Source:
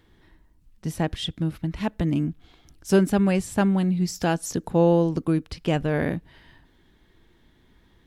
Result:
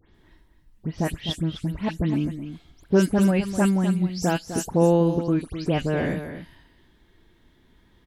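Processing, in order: delay that grows with frequency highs late, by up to 144 ms; on a send: delay 254 ms -10.5 dB

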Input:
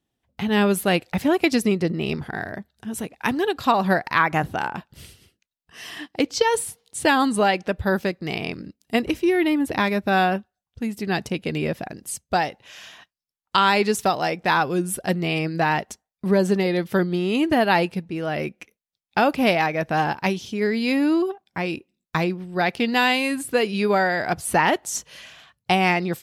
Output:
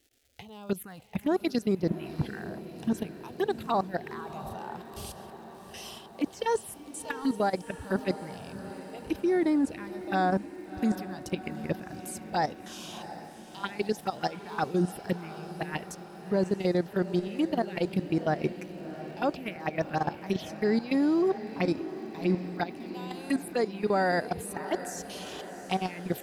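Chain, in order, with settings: reverse; compression 16:1, threshold -28 dBFS, peak gain reduction 16.5 dB; reverse; peak limiter -23.5 dBFS, peak gain reduction 7 dB; level held to a coarse grid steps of 16 dB; crackle 410 per s -61 dBFS; touch-sensitive phaser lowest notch 170 Hz, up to 2.8 kHz, full sweep at -31 dBFS; on a send: echo that smears into a reverb 717 ms, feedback 66%, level -13 dB; on the sum: trim +8.5 dB

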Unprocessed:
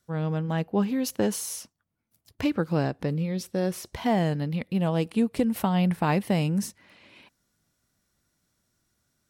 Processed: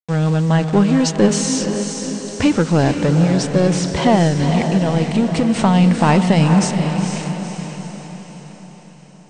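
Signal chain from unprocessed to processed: word length cut 8-bit, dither none; 4.27–5.50 s: compression, threshold -25 dBFS, peak gain reduction 7 dB; power-law waveshaper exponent 0.7; steep low-pass 8.8 kHz 96 dB/octave; on a send: echo that smears into a reverb 479 ms, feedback 53%, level -6 dB; on the sum: trim +7.5 dB

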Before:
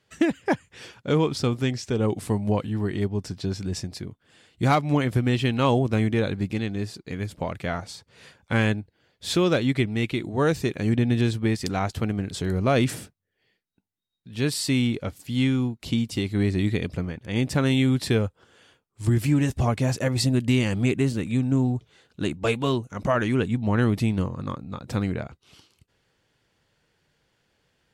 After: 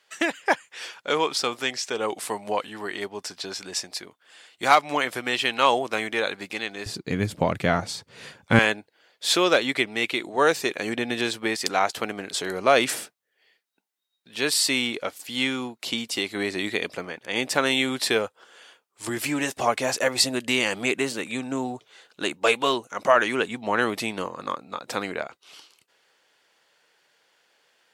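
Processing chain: high-pass 720 Hz 12 dB/octave, from 6.86 s 120 Hz, from 8.59 s 560 Hz; trim +7 dB

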